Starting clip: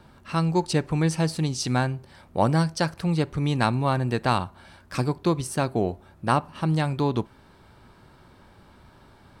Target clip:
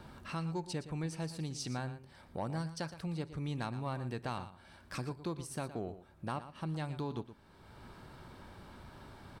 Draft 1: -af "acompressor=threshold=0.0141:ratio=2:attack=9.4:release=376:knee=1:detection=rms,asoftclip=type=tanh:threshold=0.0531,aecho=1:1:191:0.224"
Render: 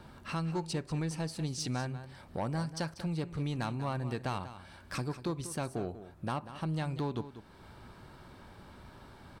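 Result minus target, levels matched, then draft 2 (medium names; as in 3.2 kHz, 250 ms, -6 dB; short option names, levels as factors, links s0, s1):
echo 74 ms late; compression: peak gain reduction -4.5 dB
-af "acompressor=threshold=0.00501:ratio=2:attack=9.4:release=376:knee=1:detection=rms,asoftclip=type=tanh:threshold=0.0531,aecho=1:1:117:0.224"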